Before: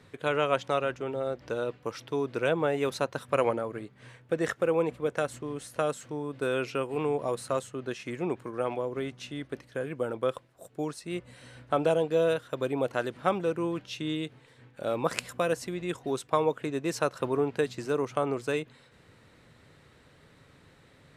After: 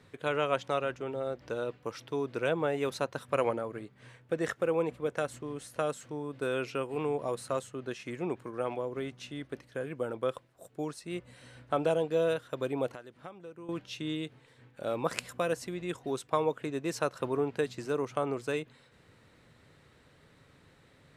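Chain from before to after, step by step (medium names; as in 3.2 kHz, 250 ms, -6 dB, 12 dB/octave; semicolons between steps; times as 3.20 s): 12.89–13.69 s: compression 5:1, threshold -42 dBFS, peak gain reduction 19.5 dB; trim -3 dB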